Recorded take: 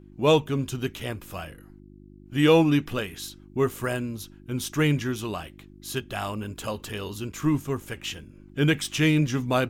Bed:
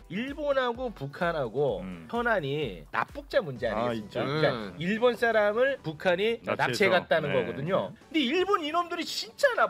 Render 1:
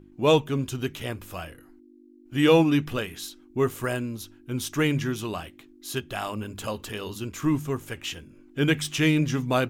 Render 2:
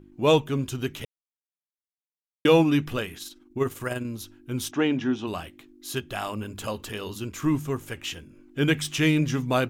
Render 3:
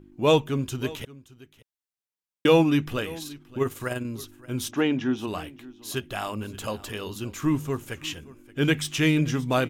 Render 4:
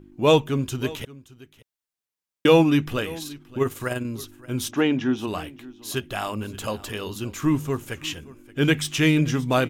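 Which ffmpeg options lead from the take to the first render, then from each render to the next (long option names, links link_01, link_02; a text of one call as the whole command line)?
ffmpeg -i in.wav -af "bandreject=frequency=50:width_type=h:width=4,bandreject=frequency=100:width_type=h:width=4,bandreject=frequency=150:width_type=h:width=4,bandreject=frequency=200:width_type=h:width=4" out.wav
ffmpeg -i in.wav -filter_complex "[0:a]asettb=1/sr,asplit=3[link_01][link_02][link_03];[link_01]atrim=end=3.174[link_04];[link_02]atrim=start=3.17:end=4.05,asetpts=PTS-STARTPTS,afade=type=in:duration=0.004:curve=qsin,afade=type=out:start_time=0.876:duration=0.004:curve=qsin,tremolo=f=20:d=0.519[link_05];[link_03]atrim=start=4.046[link_06];[link_04][link_05]acrossfade=duration=0.004:curve1=hsin:curve2=qsin[link_07];[link_07][link_06]acrossfade=duration=0.004:curve1=qsin:curve2=hsin,asplit=3[link_08][link_09][link_10];[link_08]afade=type=out:start_time=4.7:duration=0.02[link_11];[link_09]highpass=140,equalizer=frequency=150:width_type=q:width=4:gain=-8,equalizer=frequency=250:width_type=q:width=4:gain=7,equalizer=frequency=790:width_type=q:width=4:gain=8,equalizer=frequency=1200:width_type=q:width=4:gain=-3,equalizer=frequency=2100:width_type=q:width=4:gain=-6,equalizer=frequency=4500:width_type=q:width=4:gain=-8,lowpass=frequency=5000:width=0.5412,lowpass=frequency=5000:width=1.3066,afade=type=in:start_time=4.7:duration=0.02,afade=type=out:start_time=5.26:duration=0.02[link_12];[link_10]afade=type=in:start_time=5.26:duration=0.02[link_13];[link_11][link_12][link_13]amix=inputs=3:normalize=0,asplit=3[link_14][link_15][link_16];[link_14]atrim=end=1.05,asetpts=PTS-STARTPTS,afade=type=out:start_time=1.046:duration=0.004:curve=hsin[link_17];[link_15]atrim=start=1.05:end=2.45,asetpts=PTS-STARTPTS,volume=0[link_18];[link_16]atrim=start=2.45,asetpts=PTS-STARTPTS,afade=type=in:duration=0.004:curve=hsin[link_19];[link_17][link_18][link_19]concat=n=3:v=0:a=1" out.wav
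ffmpeg -i in.wav -af "aecho=1:1:575:0.1" out.wav
ffmpeg -i in.wav -af "volume=2.5dB" out.wav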